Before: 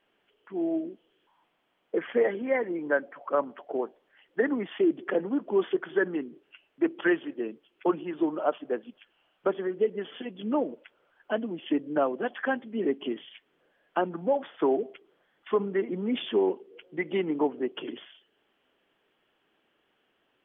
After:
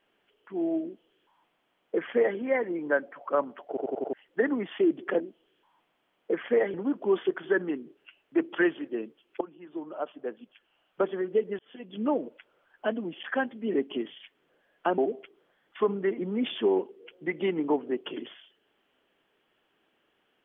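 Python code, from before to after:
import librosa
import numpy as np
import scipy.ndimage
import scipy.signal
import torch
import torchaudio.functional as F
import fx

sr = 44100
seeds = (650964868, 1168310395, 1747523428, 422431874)

y = fx.edit(x, sr, fx.duplicate(start_s=0.84, length_s=1.54, to_s=5.2),
    fx.stutter_over(start_s=3.68, slice_s=0.09, count=5),
    fx.fade_in_from(start_s=7.87, length_s=1.63, floor_db=-19.5),
    fx.fade_in_span(start_s=10.05, length_s=0.42),
    fx.cut(start_s=11.69, length_s=0.65),
    fx.cut(start_s=14.09, length_s=0.6), tone=tone)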